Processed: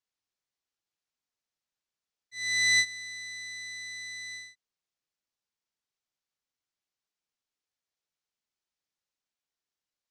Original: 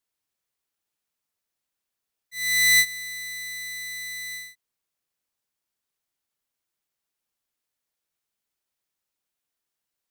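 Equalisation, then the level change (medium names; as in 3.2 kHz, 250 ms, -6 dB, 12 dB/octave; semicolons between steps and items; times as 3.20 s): four-pole ladder low-pass 7.8 kHz, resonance 25%; 0.0 dB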